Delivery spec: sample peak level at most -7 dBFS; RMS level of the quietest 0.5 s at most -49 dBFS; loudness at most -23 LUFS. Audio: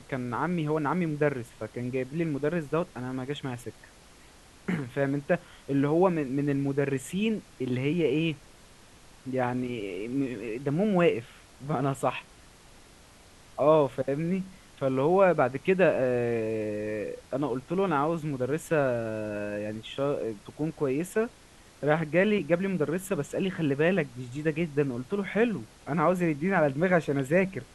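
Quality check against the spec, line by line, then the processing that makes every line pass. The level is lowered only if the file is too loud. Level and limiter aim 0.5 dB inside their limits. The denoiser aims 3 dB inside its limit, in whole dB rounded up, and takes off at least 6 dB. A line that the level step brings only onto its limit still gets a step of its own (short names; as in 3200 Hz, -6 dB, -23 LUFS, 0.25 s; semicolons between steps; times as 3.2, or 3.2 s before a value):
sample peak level -8.0 dBFS: OK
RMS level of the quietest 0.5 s -54 dBFS: OK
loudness -28.5 LUFS: OK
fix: none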